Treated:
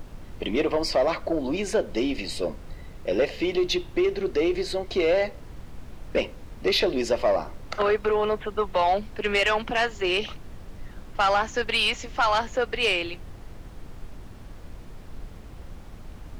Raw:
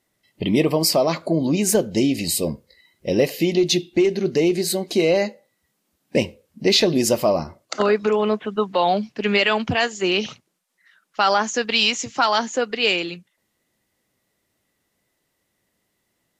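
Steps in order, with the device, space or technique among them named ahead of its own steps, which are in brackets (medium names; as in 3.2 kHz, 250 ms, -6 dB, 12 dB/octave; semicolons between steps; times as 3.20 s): aircraft cabin announcement (band-pass 400–3200 Hz; saturation -14.5 dBFS, distortion -16 dB; brown noise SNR 11 dB)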